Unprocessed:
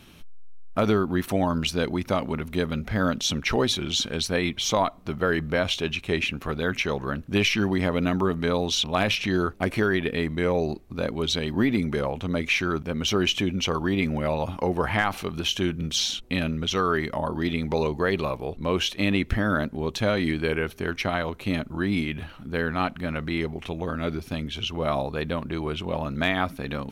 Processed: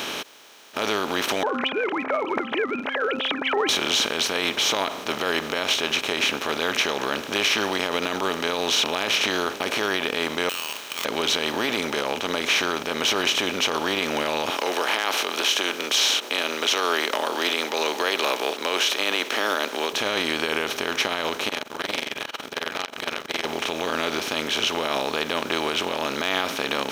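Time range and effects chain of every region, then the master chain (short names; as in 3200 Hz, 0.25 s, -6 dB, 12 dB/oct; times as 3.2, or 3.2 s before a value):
1.43–3.69 sine-wave speech + tilt -2 dB/oct + de-hum 263 Hz, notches 5
10.49–11.05 inverted band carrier 3600 Hz + compressor 2.5:1, threshold -27 dBFS + careless resampling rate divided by 8×, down filtered, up zero stuff
14.5–19.93 HPF 340 Hz 24 dB/oct + tilt +1.5 dB/oct
21.49–23.45 bell 160 Hz -13 dB 2.8 oct + AM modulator 22 Hz, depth 75% + core saturation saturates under 3500 Hz
whole clip: per-bin compression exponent 0.4; limiter -7 dBFS; HPF 700 Hz 6 dB/oct; gain -2 dB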